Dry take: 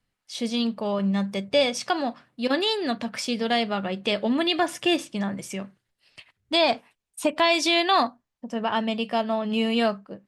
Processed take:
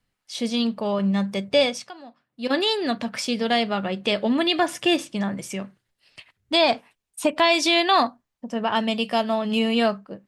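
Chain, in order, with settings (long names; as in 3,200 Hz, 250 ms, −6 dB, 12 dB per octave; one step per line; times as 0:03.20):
0:01.64–0:02.56: duck −18 dB, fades 0.27 s
0:08.75–0:09.59: high-shelf EQ 4,400 Hz +8.5 dB
level +2 dB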